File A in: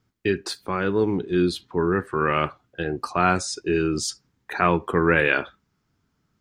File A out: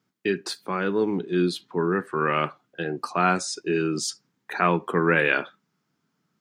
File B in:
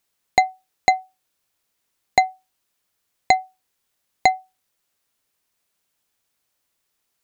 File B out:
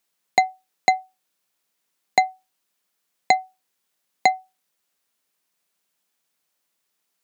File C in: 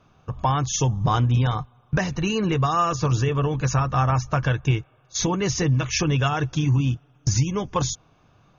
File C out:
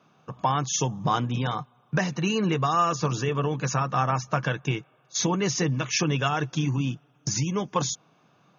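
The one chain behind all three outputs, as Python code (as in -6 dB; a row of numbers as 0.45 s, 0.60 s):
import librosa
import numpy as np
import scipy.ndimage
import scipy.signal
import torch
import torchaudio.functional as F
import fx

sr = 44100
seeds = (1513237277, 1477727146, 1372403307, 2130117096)

y = scipy.signal.sosfilt(scipy.signal.cheby1(3, 1.0, 160.0, 'highpass', fs=sr, output='sos'), x)
y = F.gain(torch.from_numpy(y), -1.0).numpy()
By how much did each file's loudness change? -1.5 LU, -1.5 LU, -3.5 LU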